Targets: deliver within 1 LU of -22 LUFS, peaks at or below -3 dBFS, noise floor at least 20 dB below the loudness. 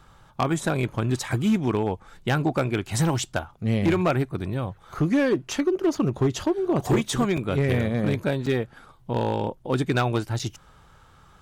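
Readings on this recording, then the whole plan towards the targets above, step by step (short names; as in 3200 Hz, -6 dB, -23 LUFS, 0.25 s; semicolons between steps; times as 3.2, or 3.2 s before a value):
clipped 1.5%; flat tops at -15.5 dBFS; dropouts 3; longest dropout 5.4 ms; loudness -25.0 LUFS; peak -15.5 dBFS; loudness target -22.0 LUFS
-> clip repair -15.5 dBFS; interpolate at 7.37/8.46/10.39, 5.4 ms; gain +3 dB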